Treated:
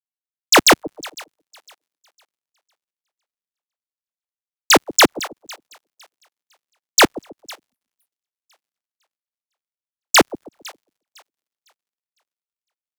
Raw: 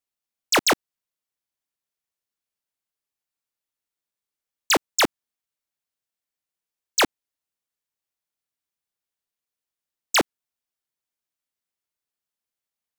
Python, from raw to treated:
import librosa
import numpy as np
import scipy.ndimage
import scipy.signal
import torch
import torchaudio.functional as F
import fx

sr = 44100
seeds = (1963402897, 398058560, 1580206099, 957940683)

y = fx.echo_split(x, sr, split_hz=610.0, low_ms=136, high_ms=505, feedback_pct=52, wet_db=-15.0)
y = fx.spec_box(y, sr, start_s=7.7, length_s=0.37, low_hz=260.0, high_hz=9000.0, gain_db=-24)
y = fx.dmg_crackle(y, sr, seeds[0], per_s=100.0, level_db=-50.0)
y = fx.band_widen(y, sr, depth_pct=100)
y = F.gain(torch.from_numpy(y), -1.0).numpy()